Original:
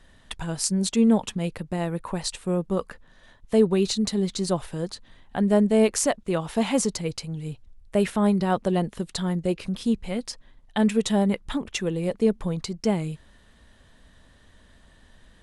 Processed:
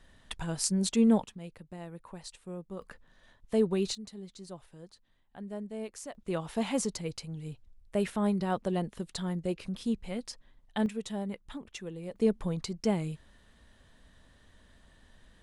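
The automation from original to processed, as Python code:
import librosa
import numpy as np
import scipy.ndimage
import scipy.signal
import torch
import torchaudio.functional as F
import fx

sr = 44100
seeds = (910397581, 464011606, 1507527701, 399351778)

y = fx.gain(x, sr, db=fx.steps((0.0, -4.5), (1.24, -16.0), (2.82, -7.5), (3.95, -20.0), (6.15, -7.5), (10.86, -14.0), (12.16, -5.0)))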